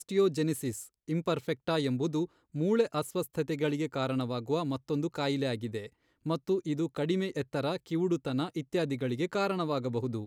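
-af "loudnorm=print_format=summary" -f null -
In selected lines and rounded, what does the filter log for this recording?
Input Integrated:    -31.9 LUFS
Input True Peak:     -14.9 dBTP
Input LRA:             2.0 LU
Input Threshold:     -42.0 LUFS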